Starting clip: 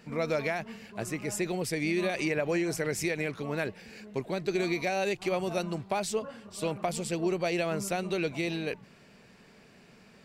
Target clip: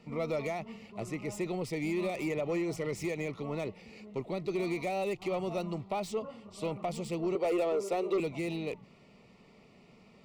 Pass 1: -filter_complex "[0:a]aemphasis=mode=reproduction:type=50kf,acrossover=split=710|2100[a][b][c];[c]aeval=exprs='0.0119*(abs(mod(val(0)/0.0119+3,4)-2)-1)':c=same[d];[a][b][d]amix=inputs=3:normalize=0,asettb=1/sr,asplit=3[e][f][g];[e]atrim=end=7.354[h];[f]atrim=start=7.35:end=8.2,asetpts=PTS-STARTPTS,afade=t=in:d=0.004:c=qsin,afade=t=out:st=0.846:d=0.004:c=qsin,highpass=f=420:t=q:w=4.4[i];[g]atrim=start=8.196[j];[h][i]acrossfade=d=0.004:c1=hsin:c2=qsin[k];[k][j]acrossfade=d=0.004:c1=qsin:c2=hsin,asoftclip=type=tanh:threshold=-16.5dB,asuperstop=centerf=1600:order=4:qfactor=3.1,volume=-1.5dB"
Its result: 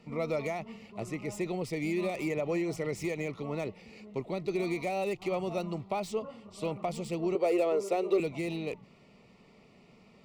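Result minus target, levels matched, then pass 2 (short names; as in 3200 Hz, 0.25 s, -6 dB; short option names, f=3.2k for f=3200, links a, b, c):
soft clip: distortion -8 dB
-filter_complex "[0:a]aemphasis=mode=reproduction:type=50kf,acrossover=split=710|2100[a][b][c];[c]aeval=exprs='0.0119*(abs(mod(val(0)/0.0119+3,4)-2)-1)':c=same[d];[a][b][d]amix=inputs=3:normalize=0,asettb=1/sr,asplit=3[e][f][g];[e]atrim=end=7.354[h];[f]atrim=start=7.35:end=8.2,asetpts=PTS-STARTPTS,afade=t=in:d=0.004:c=qsin,afade=t=out:st=0.846:d=0.004:c=qsin,highpass=f=420:t=q:w=4.4[i];[g]atrim=start=8.196[j];[h][i]acrossfade=d=0.004:c1=hsin:c2=qsin[k];[k][j]acrossfade=d=0.004:c1=qsin:c2=hsin,asoftclip=type=tanh:threshold=-23dB,asuperstop=centerf=1600:order=4:qfactor=3.1,volume=-1.5dB"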